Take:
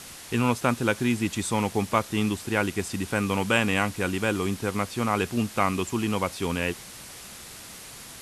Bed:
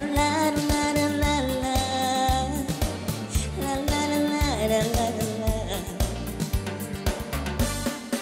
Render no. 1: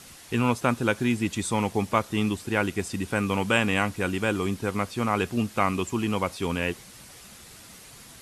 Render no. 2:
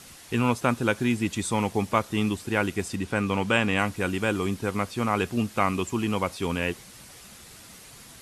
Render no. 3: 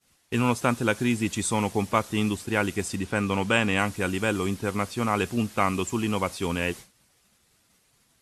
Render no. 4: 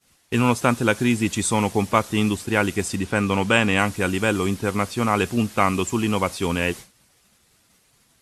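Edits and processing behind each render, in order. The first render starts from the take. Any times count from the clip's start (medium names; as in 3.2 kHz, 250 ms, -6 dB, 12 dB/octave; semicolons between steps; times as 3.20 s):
noise reduction 6 dB, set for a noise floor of -43 dBFS
2.95–3.79 s: treble shelf 10 kHz -11.5 dB
expander -35 dBFS; dynamic bell 8.1 kHz, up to +4 dB, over -45 dBFS, Q 0.8
trim +4.5 dB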